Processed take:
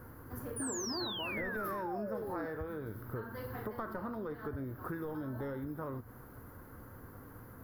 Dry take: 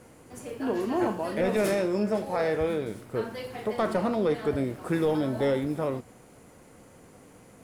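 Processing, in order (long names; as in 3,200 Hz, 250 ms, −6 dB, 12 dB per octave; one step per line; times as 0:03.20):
drawn EQ curve 110 Hz 0 dB, 180 Hz −12 dB, 250 Hz −7 dB, 710 Hz −14 dB, 1,000 Hz −5 dB, 1,600 Hz −3 dB, 2,400 Hz −23 dB, 4,900 Hz −18 dB, 8,400 Hz −30 dB, 13,000 Hz +5 dB
downward compressor 6 to 1, threshold −46 dBFS, peak gain reduction 14.5 dB
sound drawn into the spectrogram fall, 0:00.56–0:02.46, 280–10,000 Hz −49 dBFS
level +8 dB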